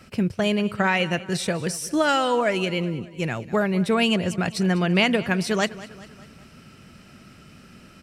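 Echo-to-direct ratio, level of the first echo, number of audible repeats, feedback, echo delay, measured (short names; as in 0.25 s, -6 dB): -16.5 dB, -17.5 dB, 3, 50%, 0.199 s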